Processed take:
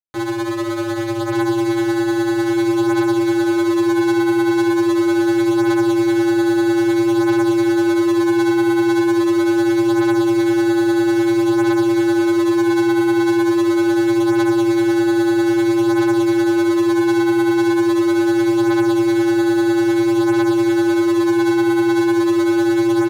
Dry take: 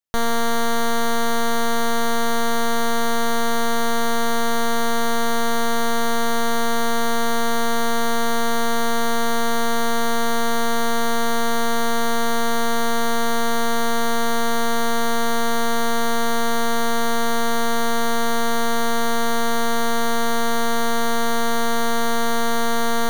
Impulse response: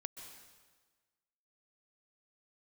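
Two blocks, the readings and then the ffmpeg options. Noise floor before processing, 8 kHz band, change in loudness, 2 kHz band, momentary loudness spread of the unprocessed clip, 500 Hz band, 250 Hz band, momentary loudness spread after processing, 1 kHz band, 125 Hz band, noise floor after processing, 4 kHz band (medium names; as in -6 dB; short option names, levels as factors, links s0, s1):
-18 dBFS, -7.0 dB, +6.0 dB, +0.5 dB, 0 LU, +6.5 dB, +12.5 dB, 2 LU, -4.0 dB, no reading, -20 dBFS, -5.0 dB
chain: -filter_complex "[0:a]acrossover=split=100[s0][s1];[s1]adynamicsmooth=sensitivity=6.5:basefreq=1200[s2];[s0][s2]amix=inputs=2:normalize=0,tremolo=f=10:d=0.37,asplit=2[s3][s4];[s4]acrusher=bits=2:mix=0:aa=0.5,volume=0.282[s5];[s3][s5]amix=inputs=2:normalize=0,aecho=1:1:1187|2374|3561|4748|5935|7122:0.708|0.326|0.15|0.0689|0.0317|0.0146,flanger=delay=15.5:depth=2.5:speed=0.23,aeval=exprs='val(0)*sin(2*PI*340*n/s)':c=same"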